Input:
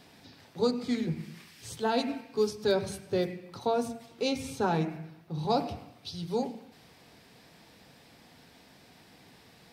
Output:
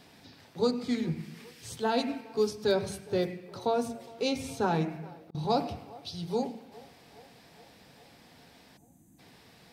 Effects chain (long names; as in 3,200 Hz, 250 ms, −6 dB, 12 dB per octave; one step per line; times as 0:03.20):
0:08.77–0:09.19: gain on a spectral selection 360–6,000 Hz −28 dB
feedback echo with a band-pass in the loop 413 ms, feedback 70%, band-pass 670 Hz, level −20.5 dB
0:04.83–0:05.35: volume swells 580 ms